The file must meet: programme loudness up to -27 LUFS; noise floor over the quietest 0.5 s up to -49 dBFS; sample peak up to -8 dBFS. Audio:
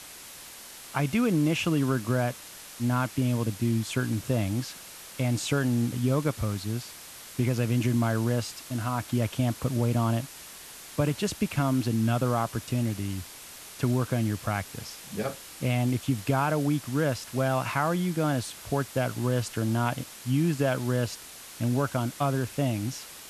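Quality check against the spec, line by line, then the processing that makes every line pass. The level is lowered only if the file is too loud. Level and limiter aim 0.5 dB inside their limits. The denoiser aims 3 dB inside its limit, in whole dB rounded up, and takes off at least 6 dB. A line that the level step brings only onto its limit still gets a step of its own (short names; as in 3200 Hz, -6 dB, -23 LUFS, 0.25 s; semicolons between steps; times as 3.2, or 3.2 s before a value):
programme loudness -28.0 LUFS: OK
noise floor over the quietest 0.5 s -45 dBFS: fail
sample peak -11.5 dBFS: OK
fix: denoiser 7 dB, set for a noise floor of -45 dBFS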